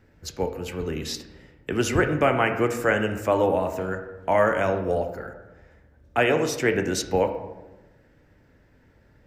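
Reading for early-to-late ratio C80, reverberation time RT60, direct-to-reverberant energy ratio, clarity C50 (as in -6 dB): 11.0 dB, 1.1 s, 5.5 dB, 9.0 dB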